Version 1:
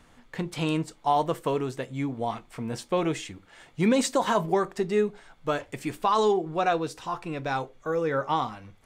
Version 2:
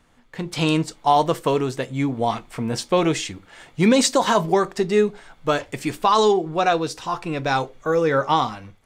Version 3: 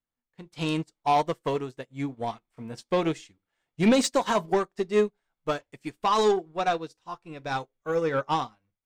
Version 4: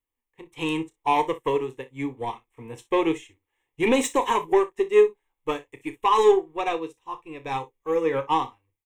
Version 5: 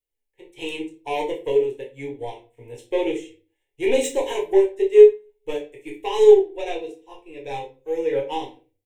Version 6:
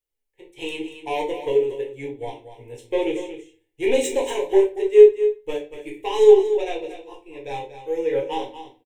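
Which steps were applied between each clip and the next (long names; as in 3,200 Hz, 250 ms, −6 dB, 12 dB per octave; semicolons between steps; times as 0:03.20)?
dynamic equaliser 5,000 Hz, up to +6 dB, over −49 dBFS, Q 1.1; automatic gain control gain up to 11 dB; level −3 dB
soft clipping −12.5 dBFS, distortion −16 dB; expander for the loud parts 2.5 to 1, over −39 dBFS
phaser with its sweep stopped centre 960 Hz, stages 8; on a send: ambience of single reflections 31 ms −12.5 dB, 59 ms −18 dB; on the sum: level +5 dB
phaser with its sweep stopped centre 480 Hz, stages 4; convolution reverb RT60 0.35 s, pre-delay 7 ms, DRR −0.5 dB; level −2 dB
single-tap delay 235 ms −11 dB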